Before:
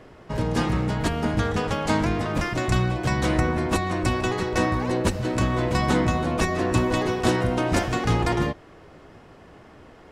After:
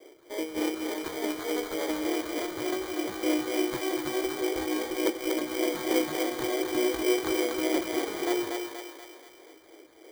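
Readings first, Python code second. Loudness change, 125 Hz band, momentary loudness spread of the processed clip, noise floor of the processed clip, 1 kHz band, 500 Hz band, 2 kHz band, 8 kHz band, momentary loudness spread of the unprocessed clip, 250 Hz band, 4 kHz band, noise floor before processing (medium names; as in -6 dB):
-5.5 dB, -28.5 dB, 7 LU, -53 dBFS, -10.0 dB, -2.5 dB, -7.0 dB, -1.0 dB, 3 LU, -4.5 dB, -2.0 dB, -49 dBFS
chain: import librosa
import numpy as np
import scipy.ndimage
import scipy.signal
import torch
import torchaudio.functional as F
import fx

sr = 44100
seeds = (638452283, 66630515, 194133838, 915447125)

y = scipy.signal.sosfilt(scipy.signal.cheby1(5, 1.0, [320.0, 5900.0], 'bandpass', fs=sr, output='sos'), x)
y = fx.tilt_eq(y, sr, slope=-3.0)
y = fx.vibrato(y, sr, rate_hz=2.9, depth_cents=35.0)
y = fx.phaser_stages(y, sr, stages=2, low_hz=620.0, high_hz=2800.0, hz=3.4, feedback_pct=45)
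y = fx.sample_hold(y, sr, seeds[0], rate_hz=2700.0, jitter_pct=0)
y = fx.echo_thinned(y, sr, ms=240, feedback_pct=55, hz=430.0, wet_db=-3.0)
y = y * 10.0 ** (-3.0 / 20.0)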